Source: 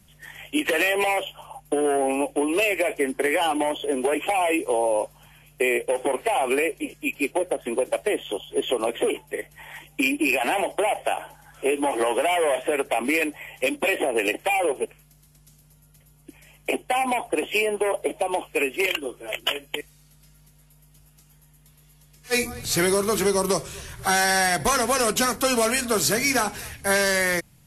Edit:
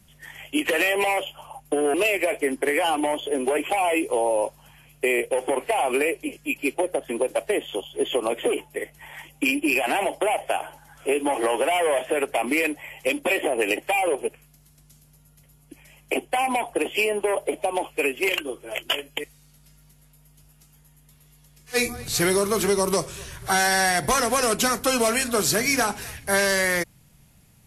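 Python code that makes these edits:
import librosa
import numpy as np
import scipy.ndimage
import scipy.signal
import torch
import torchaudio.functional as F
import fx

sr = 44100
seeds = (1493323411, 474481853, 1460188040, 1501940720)

y = fx.edit(x, sr, fx.cut(start_s=1.94, length_s=0.57), tone=tone)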